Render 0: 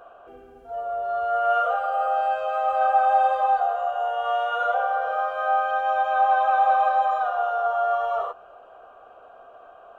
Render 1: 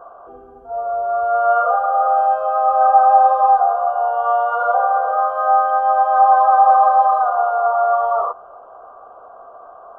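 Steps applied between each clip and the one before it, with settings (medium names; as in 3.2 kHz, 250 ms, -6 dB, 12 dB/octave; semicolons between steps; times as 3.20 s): resonant high shelf 1.6 kHz -12.5 dB, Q 3; trim +4 dB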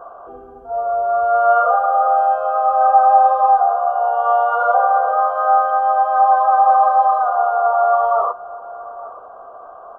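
gain riding within 3 dB 2 s; echo from a far wall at 150 m, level -17 dB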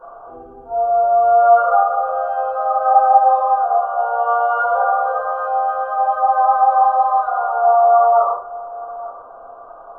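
simulated room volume 300 m³, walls furnished, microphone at 4.7 m; trim -9.5 dB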